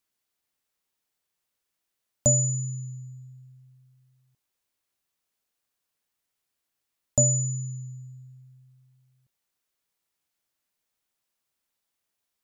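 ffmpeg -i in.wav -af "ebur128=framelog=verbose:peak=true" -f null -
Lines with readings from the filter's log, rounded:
Integrated loudness:
  I:         -24.7 LUFS
  Threshold: -38.7 LUFS
Loudness range:
  LRA:        14.7 LU
  Threshold: -51.8 LUFS
  LRA low:   -44.6 LUFS
  LRA high:  -29.9 LUFS
True peak:
  Peak:       -8.6 dBFS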